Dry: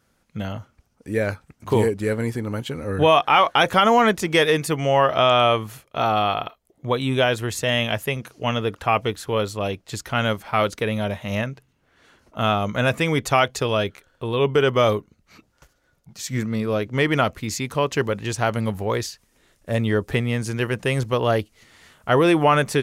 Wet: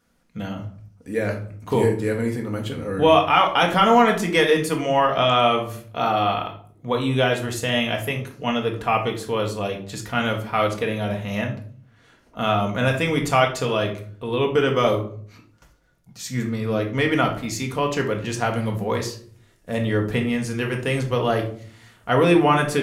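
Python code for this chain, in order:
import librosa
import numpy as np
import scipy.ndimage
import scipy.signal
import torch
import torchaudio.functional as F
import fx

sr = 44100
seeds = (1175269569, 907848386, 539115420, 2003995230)

y = fx.room_shoebox(x, sr, seeds[0], volume_m3=540.0, walls='furnished', distance_m=1.8)
y = y * librosa.db_to_amplitude(-3.0)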